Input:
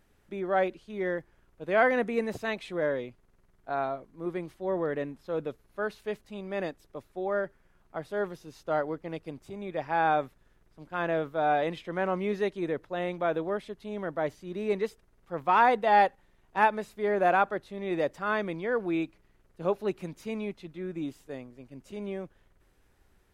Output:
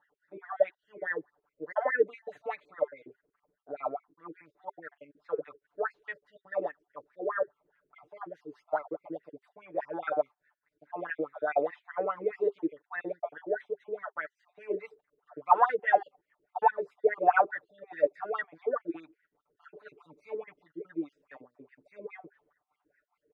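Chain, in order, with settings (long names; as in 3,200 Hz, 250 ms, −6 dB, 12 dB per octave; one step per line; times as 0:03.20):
time-frequency cells dropped at random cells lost 40%
LFO wah 4.8 Hz 350–2,000 Hz, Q 8.2
notch filter 400 Hz, Q 12
comb filter 6.8 ms, depth 92%
level +8 dB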